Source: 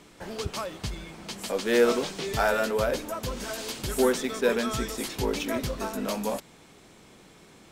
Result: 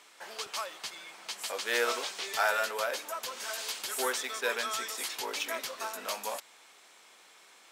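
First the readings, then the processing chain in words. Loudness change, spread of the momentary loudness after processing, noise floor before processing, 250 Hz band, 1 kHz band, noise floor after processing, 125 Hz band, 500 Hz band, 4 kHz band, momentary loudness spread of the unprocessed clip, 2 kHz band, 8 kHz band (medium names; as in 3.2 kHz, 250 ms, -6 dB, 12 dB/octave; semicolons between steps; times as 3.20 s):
-5.0 dB, 11 LU, -54 dBFS, -19.5 dB, -2.0 dB, -58 dBFS, under -30 dB, -10.0 dB, 0.0 dB, 12 LU, -0.5 dB, 0.0 dB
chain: high-pass 880 Hz 12 dB/octave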